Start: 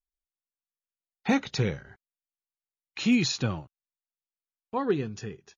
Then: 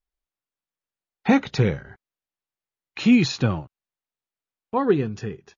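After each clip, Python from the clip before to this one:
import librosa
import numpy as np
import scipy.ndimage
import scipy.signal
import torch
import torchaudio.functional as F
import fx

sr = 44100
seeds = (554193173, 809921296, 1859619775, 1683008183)

y = fx.lowpass(x, sr, hz=2400.0, slope=6)
y = F.gain(torch.from_numpy(y), 7.0).numpy()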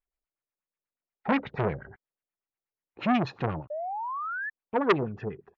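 y = fx.filter_lfo_lowpass(x, sr, shape='sine', hz=8.3, low_hz=420.0, high_hz=2500.0, q=2.3)
y = fx.spec_paint(y, sr, seeds[0], shape='rise', start_s=3.7, length_s=0.8, low_hz=580.0, high_hz=1800.0, level_db=-28.0)
y = fx.transformer_sat(y, sr, knee_hz=1500.0)
y = F.gain(torch.from_numpy(y), -5.0).numpy()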